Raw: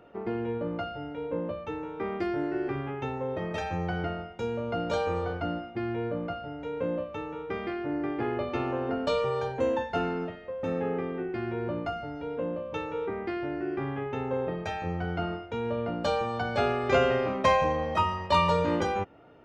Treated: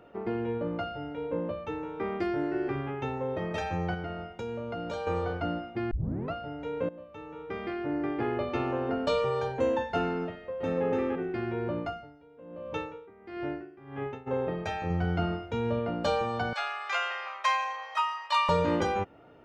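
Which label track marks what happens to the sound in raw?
3.940000	5.070000	compressor 3:1, threshold -33 dBFS
5.910000	5.910000	tape start 0.41 s
6.890000	7.860000	fade in, from -18.5 dB
10.310000	10.860000	echo throw 0.29 s, feedback 10%, level -2 dB
11.790000	14.260000	dB-linear tremolo 0.85 Hz -> 2.1 Hz, depth 21 dB
14.900000	15.790000	tone controls bass +5 dB, treble +4 dB
16.530000	18.490000	HPF 950 Hz 24 dB/oct

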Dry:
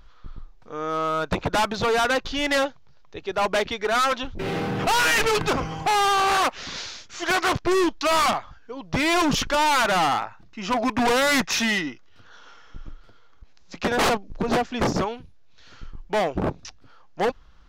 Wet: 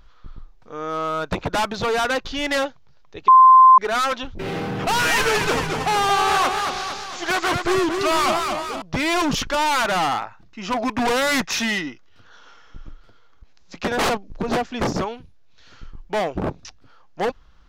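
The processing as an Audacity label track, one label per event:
3.280000	3.780000	bleep 1040 Hz -6 dBFS
4.670000	8.820000	warbling echo 0.227 s, feedback 54%, depth 125 cents, level -5 dB

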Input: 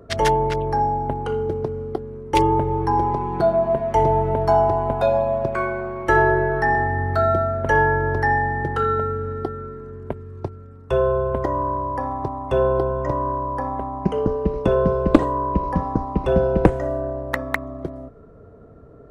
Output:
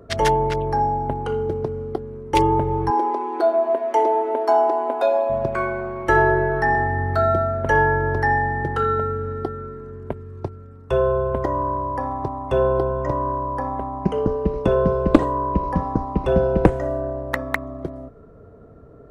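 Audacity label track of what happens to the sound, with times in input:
2.900000	5.300000	brick-wall FIR high-pass 240 Hz

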